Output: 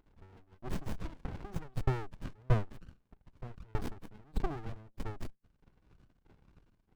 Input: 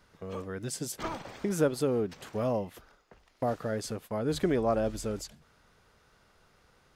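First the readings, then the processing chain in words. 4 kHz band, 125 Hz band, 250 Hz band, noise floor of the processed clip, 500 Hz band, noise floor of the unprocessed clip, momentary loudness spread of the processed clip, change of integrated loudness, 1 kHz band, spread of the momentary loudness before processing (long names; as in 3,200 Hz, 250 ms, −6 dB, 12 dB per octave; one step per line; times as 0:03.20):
−12.0 dB, +1.0 dB, −11.5 dB, −76 dBFS, −15.0 dB, −65 dBFS, 18 LU, −8.0 dB, −8.0 dB, 11 LU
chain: spectral envelope exaggerated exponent 3
parametric band 570 Hz −8 dB 0.35 octaves
auto-filter high-pass saw up 1.6 Hz 550–3,100 Hz
windowed peak hold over 65 samples
level +7.5 dB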